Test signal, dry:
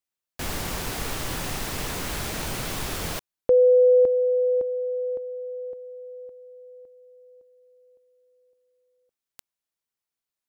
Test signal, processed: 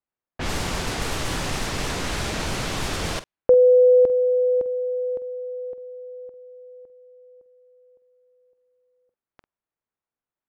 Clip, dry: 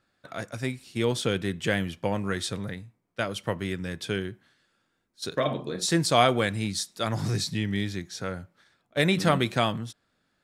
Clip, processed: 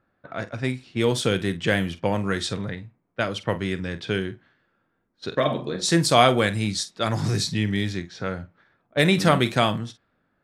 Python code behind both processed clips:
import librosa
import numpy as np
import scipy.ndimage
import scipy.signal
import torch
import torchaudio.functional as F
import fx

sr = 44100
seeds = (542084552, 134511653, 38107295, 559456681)

y = fx.env_lowpass(x, sr, base_hz=1500.0, full_db=-23.0)
y = fx.doubler(y, sr, ms=47.0, db=-14)
y = F.gain(torch.from_numpy(y), 4.0).numpy()